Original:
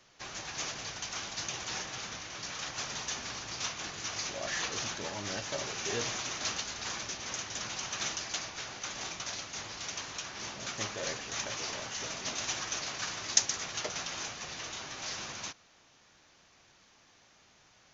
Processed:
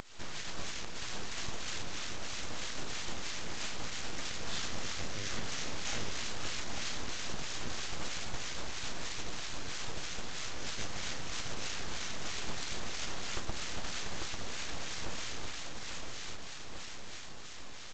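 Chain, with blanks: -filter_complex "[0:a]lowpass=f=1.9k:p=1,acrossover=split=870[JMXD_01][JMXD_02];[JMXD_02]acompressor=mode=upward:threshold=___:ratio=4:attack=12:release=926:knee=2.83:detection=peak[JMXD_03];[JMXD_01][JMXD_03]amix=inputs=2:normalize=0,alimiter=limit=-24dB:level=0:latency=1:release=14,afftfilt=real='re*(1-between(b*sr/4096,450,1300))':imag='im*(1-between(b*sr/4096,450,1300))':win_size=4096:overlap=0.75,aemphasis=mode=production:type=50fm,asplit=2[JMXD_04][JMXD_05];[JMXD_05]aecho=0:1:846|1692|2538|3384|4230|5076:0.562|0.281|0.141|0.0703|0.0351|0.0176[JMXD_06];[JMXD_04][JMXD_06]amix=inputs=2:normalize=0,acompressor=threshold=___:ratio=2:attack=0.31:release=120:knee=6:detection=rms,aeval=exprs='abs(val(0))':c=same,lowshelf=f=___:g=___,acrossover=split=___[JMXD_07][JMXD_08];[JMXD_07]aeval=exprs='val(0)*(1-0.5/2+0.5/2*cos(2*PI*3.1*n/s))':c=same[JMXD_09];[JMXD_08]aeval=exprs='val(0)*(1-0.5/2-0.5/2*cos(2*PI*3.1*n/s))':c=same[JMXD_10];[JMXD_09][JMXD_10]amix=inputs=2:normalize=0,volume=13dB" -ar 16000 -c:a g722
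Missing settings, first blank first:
-51dB, -44dB, 230, 4.5, 1200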